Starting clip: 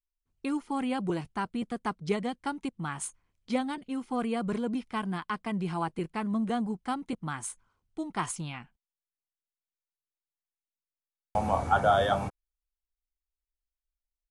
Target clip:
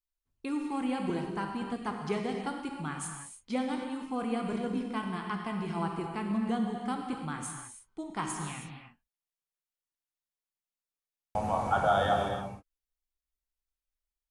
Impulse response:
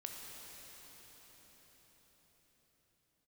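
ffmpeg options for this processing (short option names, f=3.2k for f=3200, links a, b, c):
-filter_complex "[1:a]atrim=start_sample=2205,afade=t=out:st=0.36:d=0.01,atrim=end_sample=16317,asetrate=42336,aresample=44100[a];[0:a][a]afir=irnorm=-1:irlink=0,volume=1.5dB"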